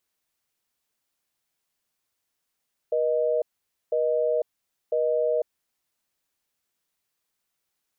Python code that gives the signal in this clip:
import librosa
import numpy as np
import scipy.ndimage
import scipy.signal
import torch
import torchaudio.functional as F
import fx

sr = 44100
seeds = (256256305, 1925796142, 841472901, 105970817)

y = fx.call_progress(sr, length_s=2.7, kind='busy tone', level_db=-23.5)